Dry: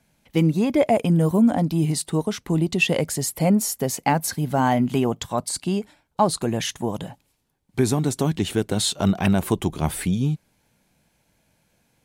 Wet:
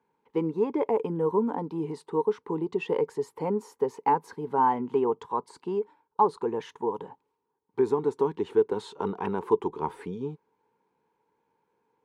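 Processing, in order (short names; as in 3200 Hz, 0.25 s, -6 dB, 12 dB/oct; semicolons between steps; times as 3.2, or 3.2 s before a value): double band-pass 640 Hz, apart 1.1 oct; gain +5.5 dB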